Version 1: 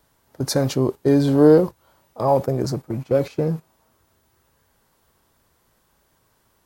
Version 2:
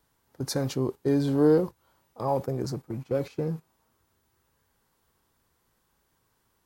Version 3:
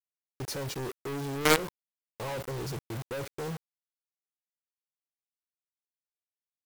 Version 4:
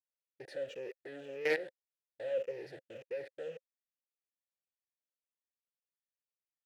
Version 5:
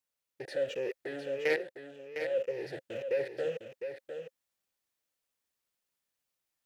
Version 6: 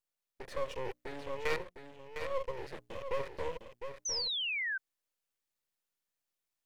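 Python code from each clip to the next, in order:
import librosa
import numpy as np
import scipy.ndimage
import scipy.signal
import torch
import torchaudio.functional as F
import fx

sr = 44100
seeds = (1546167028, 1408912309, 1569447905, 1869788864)

y1 = fx.peak_eq(x, sr, hz=620.0, db=-7.0, octaves=0.22)
y1 = y1 * librosa.db_to_amplitude(-7.5)
y2 = y1 + 0.41 * np.pad(y1, (int(2.1 * sr / 1000.0), 0))[:len(y1)]
y2 = fx.quant_companded(y2, sr, bits=2)
y2 = y2 * librosa.db_to_amplitude(-9.0)
y3 = fx.spec_ripple(y2, sr, per_octave=0.81, drift_hz=-1.8, depth_db=9)
y3 = fx.vowel_filter(y3, sr, vowel='e')
y3 = y3 * librosa.db_to_amplitude(2.5)
y4 = fx.rider(y3, sr, range_db=4, speed_s=0.5)
y4 = y4 + 10.0 ** (-8.0 / 20.0) * np.pad(y4, (int(706 * sr / 1000.0), 0))[:len(y4)]
y4 = y4 * librosa.db_to_amplitude(5.5)
y5 = fx.hum_notches(y4, sr, base_hz=60, count=5)
y5 = np.maximum(y5, 0.0)
y5 = fx.spec_paint(y5, sr, seeds[0], shape='fall', start_s=4.05, length_s=0.73, low_hz=1500.0, high_hz=6300.0, level_db=-35.0)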